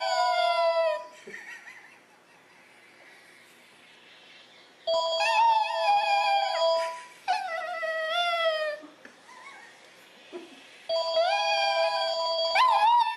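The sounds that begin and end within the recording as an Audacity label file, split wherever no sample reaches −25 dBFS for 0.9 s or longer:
4.880000	8.700000	sound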